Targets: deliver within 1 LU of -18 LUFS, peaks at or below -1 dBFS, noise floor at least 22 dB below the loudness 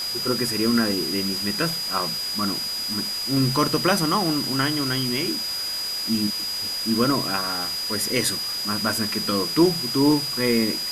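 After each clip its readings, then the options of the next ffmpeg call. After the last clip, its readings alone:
steady tone 4.9 kHz; tone level -26 dBFS; noise floor -28 dBFS; noise floor target -44 dBFS; loudness -22.0 LUFS; peak level -5.5 dBFS; loudness target -18.0 LUFS
-> -af "bandreject=f=4900:w=30"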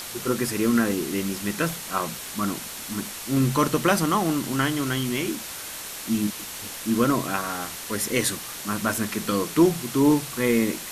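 steady tone not found; noise floor -36 dBFS; noise floor target -47 dBFS
-> -af "afftdn=nr=11:nf=-36"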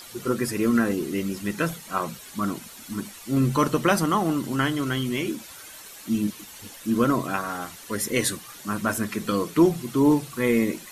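noise floor -44 dBFS; noise floor target -47 dBFS
-> -af "afftdn=nr=6:nf=-44"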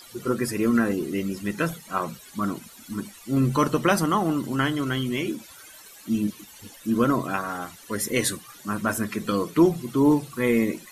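noise floor -48 dBFS; loudness -25.0 LUFS; peak level -6.5 dBFS; loudness target -18.0 LUFS
-> -af "volume=2.24,alimiter=limit=0.891:level=0:latency=1"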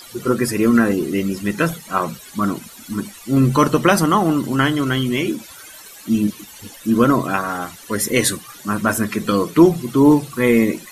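loudness -18.0 LUFS; peak level -1.0 dBFS; noise floor -41 dBFS

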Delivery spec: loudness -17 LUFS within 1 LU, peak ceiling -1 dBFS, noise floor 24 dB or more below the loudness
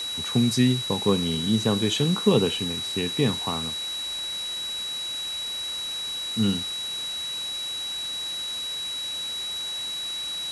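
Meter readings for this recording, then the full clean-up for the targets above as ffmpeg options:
steady tone 3.9 kHz; tone level -29 dBFS; noise floor -32 dBFS; noise floor target -50 dBFS; loudness -25.5 LUFS; peak level -6.0 dBFS; loudness target -17.0 LUFS
-> -af "bandreject=f=3900:w=30"
-af "afftdn=nr=18:nf=-32"
-af "volume=2.66,alimiter=limit=0.891:level=0:latency=1"

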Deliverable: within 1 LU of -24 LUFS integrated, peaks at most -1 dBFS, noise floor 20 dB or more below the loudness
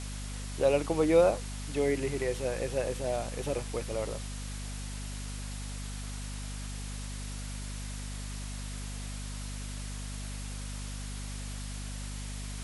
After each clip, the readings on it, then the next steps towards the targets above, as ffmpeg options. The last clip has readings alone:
hum 50 Hz; highest harmonic 250 Hz; hum level -36 dBFS; noise floor -39 dBFS; noise floor target -54 dBFS; loudness -34.0 LUFS; peak level -12.0 dBFS; loudness target -24.0 LUFS
-> -af "bandreject=f=50:t=h:w=4,bandreject=f=100:t=h:w=4,bandreject=f=150:t=h:w=4,bandreject=f=200:t=h:w=4,bandreject=f=250:t=h:w=4"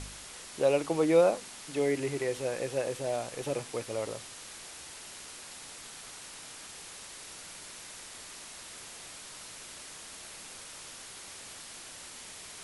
hum not found; noise floor -47 dBFS; noise floor target -55 dBFS
-> -af "afftdn=nr=8:nf=-47"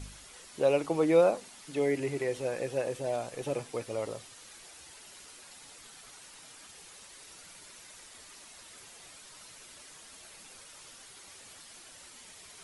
noise floor -52 dBFS; loudness -30.5 LUFS; peak level -12.5 dBFS; loudness target -24.0 LUFS
-> -af "volume=2.11"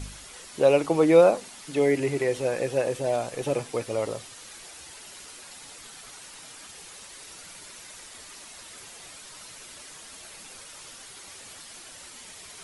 loudness -24.0 LUFS; peak level -6.0 dBFS; noise floor -46 dBFS

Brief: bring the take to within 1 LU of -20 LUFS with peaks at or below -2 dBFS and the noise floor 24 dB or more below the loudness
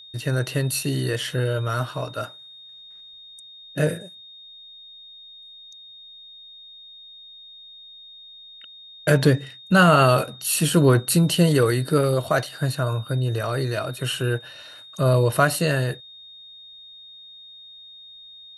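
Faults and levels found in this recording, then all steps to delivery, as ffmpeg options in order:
steady tone 3.7 kHz; tone level -42 dBFS; loudness -21.5 LUFS; peak level -4.0 dBFS; loudness target -20.0 LUFS
-> -af "bandreject=f=3700:w=30"
-af "volume=1.19"

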